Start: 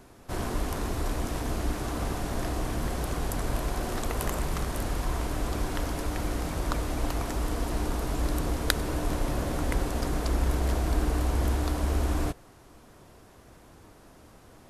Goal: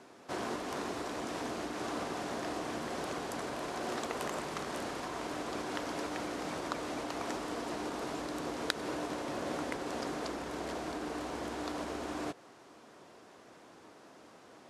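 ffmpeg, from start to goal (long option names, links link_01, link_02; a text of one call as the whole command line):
ffmpeg -i in.wav -af "acompressor=threshold=-29dB:ratio=2.5,highpass=260,lowpass=6900" out.wav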